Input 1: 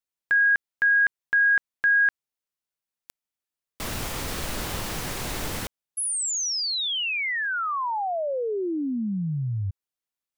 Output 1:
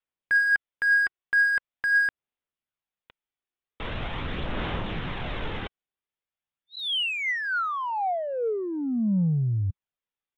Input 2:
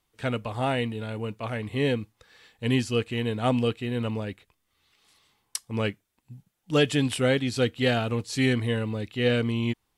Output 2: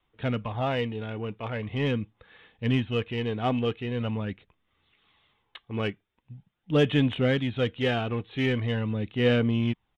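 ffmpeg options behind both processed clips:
-filter_complex "[0:a]adynamicequalizer=threshold=0.01:dfrequency=180:dqfactor=2.3:tfrequency=180:tqfactor=2.3:attack=5:release=100:ratio=0.375:range=2:mode=boostabove:tftype=bell,aresample=8000,aresample=44100,asplit=2[a][b];[b]asoftclip=type=tanh:threshold=-26.5dB,volume=-4.5dB[c];[a][c]amix=inputs=2:normalize=0,aphaser=in_gain=1:out_gain=1:delay=2.7:decay=0.31:speed=0.43:type=sinusoidal,volume=-4.5dB"

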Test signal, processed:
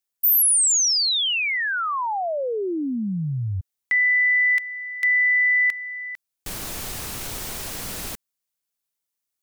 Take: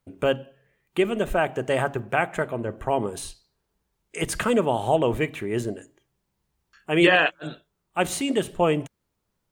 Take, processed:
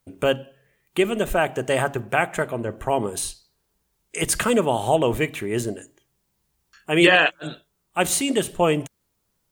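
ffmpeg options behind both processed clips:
-af "highshelf=f=4.5k:g=9,volume=1.5dB"

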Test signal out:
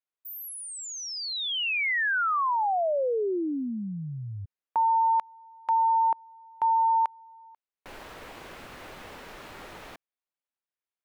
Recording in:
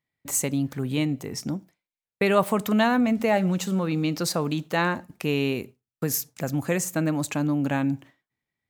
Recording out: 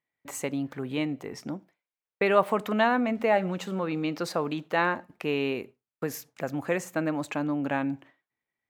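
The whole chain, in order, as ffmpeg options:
-af "bass=f=250:g=-11,treble=f=4k:g=-14"

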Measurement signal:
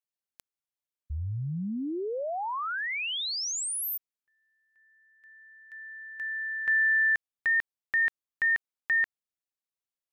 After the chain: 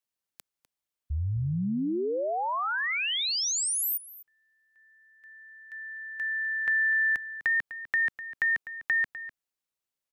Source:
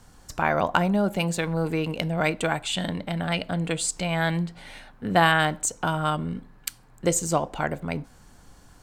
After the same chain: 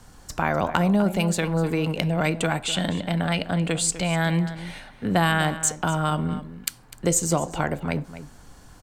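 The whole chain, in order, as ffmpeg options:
-filter_complex "[0:a]acrossover=split=280|5800[a][b][c];[b]acompressor=threshold=-32dB:ratio=2:attack=17:release=68:knee=2.83:detection=peak[d];[a][d][c]amix=inputs=3:normalize=0,asplit=2[e][f];[f]adelay=250.7,volume=-13dB,highshelf=f=4k:g=-5.64[g];[e][g]amix=inputs=2:normalize=0,volume=3.5dB"

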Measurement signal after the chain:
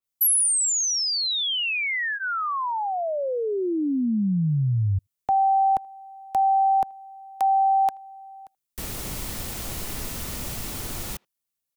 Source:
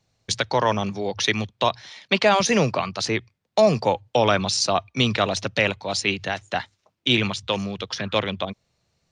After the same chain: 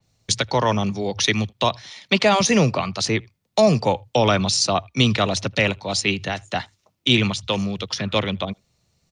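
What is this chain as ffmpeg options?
-filter_complex "[0:a]acrossover=split=290|970|1600[a][b][c][d];[a]acontrast=30[e];[e][b][c][d]amix=inputs=4:normalize=0,highshelf=f=5.9k:g=10,bandreject=f=1.6k:w=16,asplit=2[f][g];[g]adelay=80,highpass=300,lowpass=3.4k,asoftclip=type=hard:threshold=-9dB,volume=-29dB[h];[f][h]amix=inputs=2:normalize=0,adynamicequalizer=threshold=0.0178:dfrequency=4400:dqfactor=0.7:tfrequency=4400:tqfactor=0.7:attack=5:release=100:ratio=0.375:range=2:mode=cutabove:tftype=highshelf"

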